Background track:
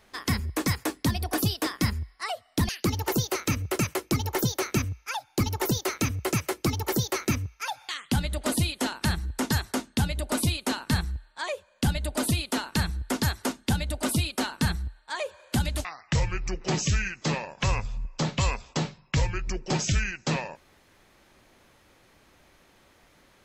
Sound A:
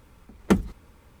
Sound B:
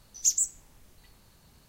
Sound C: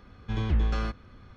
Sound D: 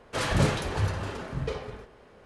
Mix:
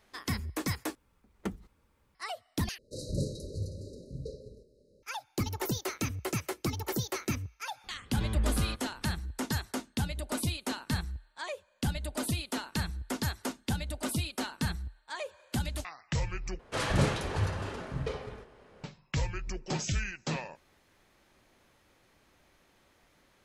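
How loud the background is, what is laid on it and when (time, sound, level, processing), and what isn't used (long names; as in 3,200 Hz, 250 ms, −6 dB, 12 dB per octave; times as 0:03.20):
background track −6.5 dB
0:00.95: overwrite with A −14.5 dB + low-shelf EQ 390 Hz −2.5 dB
0:02.78: overwrite with D −8.5 dB + linear-phase brick-wall band-stop 620–3,800 Hz
0:07.84: mix in C −5 dB
0:16.59: overwrite with D −3 dB
not used: B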